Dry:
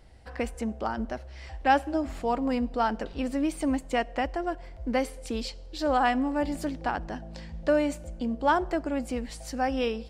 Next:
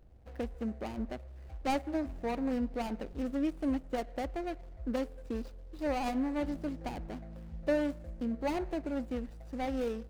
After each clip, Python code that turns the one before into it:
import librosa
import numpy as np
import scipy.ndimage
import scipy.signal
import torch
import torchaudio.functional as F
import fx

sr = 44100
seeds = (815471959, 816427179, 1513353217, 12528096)

y = scipy.ndimage.median_filter(x, 41, mode='constant')
y = y * librosa.db_to_amplitude(-4.0)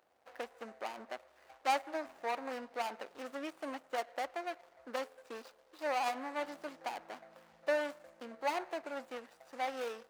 y = scipy.signal.sosfilt(scipy.signal.butter(2, 730.0, 'highpass', fs=sr, output='sos'), x)
y = fx.peak_eq(y, sr, hz=1100.0, db=3.5, octaves=1.4)
y = y * librosa.db_to_amplitude(2.0)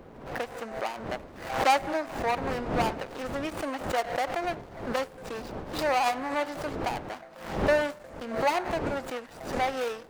y = fx.dmg_wind(x, sr, seeds[0], corner_hz=560.0, level_db=-50.0)
y = fx.pre_swell(y, sr, db_per_s=81.0)
y = y * librosa.db_to_amplitude(8.5)